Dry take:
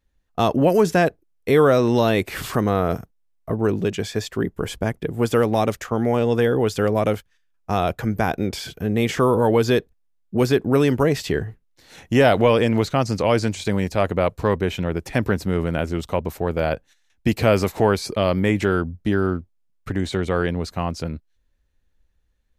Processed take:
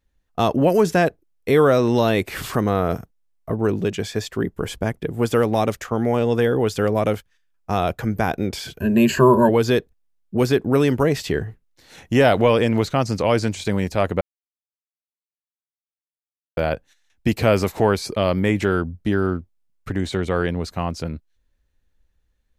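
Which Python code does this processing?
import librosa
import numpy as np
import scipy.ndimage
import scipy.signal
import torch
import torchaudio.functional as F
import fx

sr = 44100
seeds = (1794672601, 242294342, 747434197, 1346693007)

y = fx.ripple_eq(x, sr, per_octave=1.4, db=17, at=(8.8, 9.49))
y = fx.edit(y, sr, fx.silence(start_s=14.21, length_s=2.36), tone=tone)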